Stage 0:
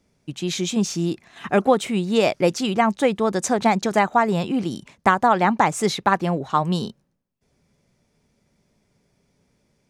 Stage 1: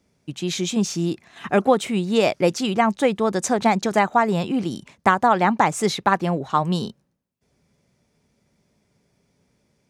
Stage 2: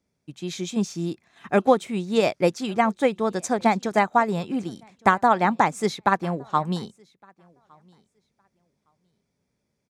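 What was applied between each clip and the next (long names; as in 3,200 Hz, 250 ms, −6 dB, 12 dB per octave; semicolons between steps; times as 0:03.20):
high-pass filter 44 Hz
notch filter 2,900 Hz, Q 14; repeating echo 1,162 ms, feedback 18%, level −23 dB; expander for the loud parts 1.5 to 1, over −33 dBFS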